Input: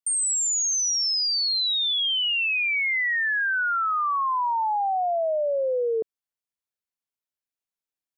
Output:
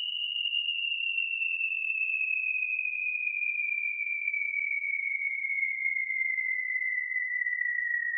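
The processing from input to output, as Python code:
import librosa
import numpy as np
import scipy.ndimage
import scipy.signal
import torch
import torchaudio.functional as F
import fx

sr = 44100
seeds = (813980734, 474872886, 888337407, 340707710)

y = fx.paulstretch(x, sr, seeds[0], factor=9.6, window_s=0.25, from_s=2.27)
y = y * 10.0 ** (-6.5 / 20.0)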